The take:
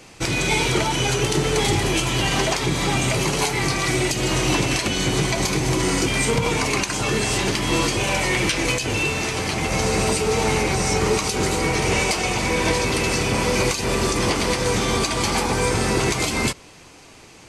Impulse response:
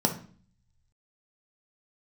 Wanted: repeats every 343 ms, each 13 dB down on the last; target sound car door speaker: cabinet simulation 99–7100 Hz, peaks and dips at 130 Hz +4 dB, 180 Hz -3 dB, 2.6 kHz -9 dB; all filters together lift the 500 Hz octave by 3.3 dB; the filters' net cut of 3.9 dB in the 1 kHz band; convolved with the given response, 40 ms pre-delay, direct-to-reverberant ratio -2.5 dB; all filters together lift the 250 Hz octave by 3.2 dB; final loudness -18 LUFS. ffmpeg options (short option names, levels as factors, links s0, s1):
-filter_complex "[0:a]equalizer=f=250:t=o:g=4,equalizer=f=500:t=o:g=4,equalizer=f=1000:t=o:g=-6.5,aecho=1:1:343|686|1029:0.224|0.0493|0.0108,asplit=2[s0][s1];[1:a]atrim=start_sample=2205,adelay=40[s2];[s1][s2]afir=irnorm=-1:irlink=0,volume=0.398[s3];[s0][s3]amix=inputs=2:normalize=0,highpass=99,equalizer=f=130:t=q:w=4:g=4,equalizer=f=180:t=q:w=4:g=-3,equalizer=f=2600:t=q:w=4:g=-9,lowpass=f=7100:w=0.5412,lowpass=f=7100:w=1.3066,volume=0.501"